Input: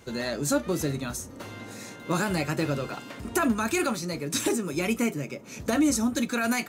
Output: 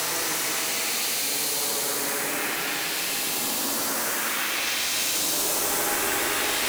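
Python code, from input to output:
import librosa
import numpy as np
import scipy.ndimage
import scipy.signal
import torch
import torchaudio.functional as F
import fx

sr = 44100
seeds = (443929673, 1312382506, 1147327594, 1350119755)

p1 = fx.spec_flatten(x, sr, power=0.23)
p2 = scipy.signal.sosfilt(scipy.signal.butter(2, 260.0, 'highpass', fs=sr, output='sos'), p1)
p3 = fx.dispersion(p2, sr, late='highs', ms=120.0, hz=2500.0)
p4 = p3 + 10.0 ** (-52.0 / 20.0) * np.sin(2.0 * np.pi * 810.0 * np.arange(len(p3)) / sr)
p5 = fx.fold_sine(p4, sr, drive_db=17, ceiling_db=-10.0)
p6 = p4 + F.gain(torch.from_numpy(p5), -9.5).numpy()
p7 = fx.paulstretch(p6, sr, seeds[0], factor=16.0, window_s=0.1, from_s=4.13)
y = F.gain(torch.from_numpy(p7), -5.5).numpy()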